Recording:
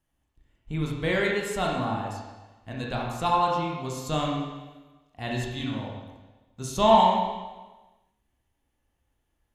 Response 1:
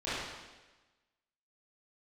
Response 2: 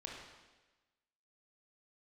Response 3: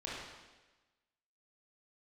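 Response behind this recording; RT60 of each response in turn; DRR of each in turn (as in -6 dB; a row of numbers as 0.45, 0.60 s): 2; 1.2, 1.2, 1.2 s; -14.0, -2.0, -7.0 dB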